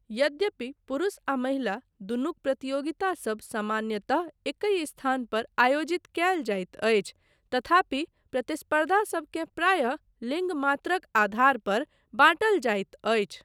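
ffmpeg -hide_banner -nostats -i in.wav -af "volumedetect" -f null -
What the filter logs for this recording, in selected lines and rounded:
mean_volume: -27.5 dB
max_volume: -7.2 dB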